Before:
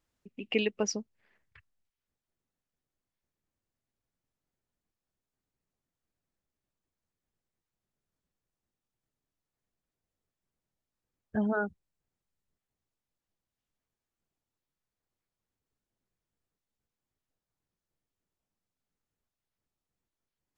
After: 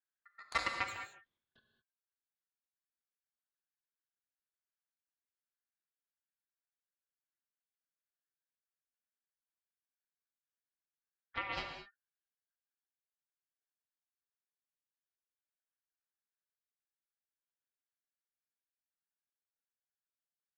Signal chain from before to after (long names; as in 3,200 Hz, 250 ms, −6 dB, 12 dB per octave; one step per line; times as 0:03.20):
noise gate −59 dBFS, range −8 dB
high-shelf EQ 2,500 Hz −7 dB
harmonic generator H 7 −13 dB, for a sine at −15 dBFS
tape wow and flutter 20 cents
ring modulation 1,600 Hz
reverb whose tail is shaped and stops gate 240 ms flat, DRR 4 dB
level −3 dB